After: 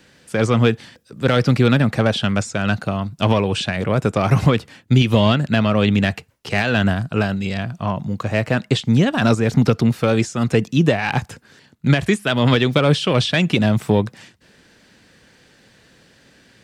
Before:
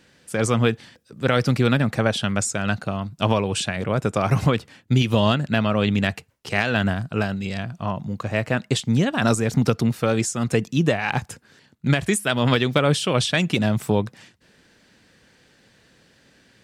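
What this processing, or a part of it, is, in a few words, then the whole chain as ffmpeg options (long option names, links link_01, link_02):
one-band saturation: -filter_complex "[0:a]acrossover=split=5100[link_01][link_02];[link_02]acompressor=threshold=-45dB:ratio=4:attack=1:release=60[link_03];[link_01][link_03]amix=inputs=2:normalize=0,acrossover=split=460|2700[link_04][link_05][link_06];[link_05]asoftclip=type=tanh:threshold=-19dB[link_07];[link_04][link_07][link_06]amix=inputs=3:normalize=0,volume=4.5dB"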